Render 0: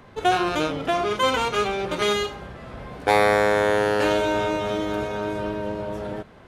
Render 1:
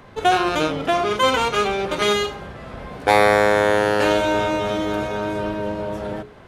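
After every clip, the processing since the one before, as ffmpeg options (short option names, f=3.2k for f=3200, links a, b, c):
-af "bandreject=f=60:t=h:w=6,bandreject=f=120:t=h:w=6,bandreject=f=180:t=h:w=6,bandreject=f=240:t=h:w=6,bandreject=f=300:t=h:w=6,bandreject=f=360:t=h:w=6,bandreject=f=420:t=h:w=6,volume=3.5dB"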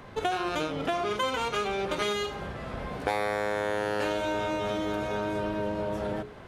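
-af "acompressor=threshold=-26dB:ratio=4,volume=-1.5dB"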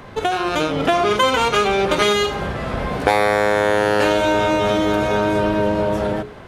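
-af "dynaudnorm=f=250:g=5:m=4.5dB,volume=8dB"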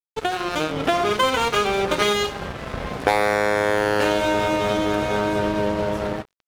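-af "aeval=exprs='sgn(val(0))*max(abs(val(0))-0.0398,0)':c=same,volume=-1.5dB"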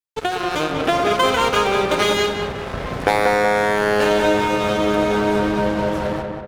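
-filter_complex "[0:a]asplit=2[a][b];[b]adelay=187,lowpass=f=2.3k:p=1,volume=-4dB,asplit=2[c][d];[d]adelay=187,lowpass=f=2.3k:p=1,volume=0.51,asplit=2[e][f];[f]adelay=187,lowpass=f=2.3k:p=1,volume=0.51,asplit=2[g][h];[h]adelay=187,lowpass=f=2.3k:p=1,volume=0.51,asplit=2[i][j];[j]adelay=187,lowpass=f=2.3k:p=1,volume=0.51,asplit=2[k][l];[l]adelay=187,lowpass=f=2.3k:p=1,volume=0.51,asplit=2[m][n];[n]adelay=187,lowpass=f=2.3k:p=1,volume=0.51[o];[a][c][e][g][i][k][m][o]amix=inputs=8:normalize=0,volume=1.5dB"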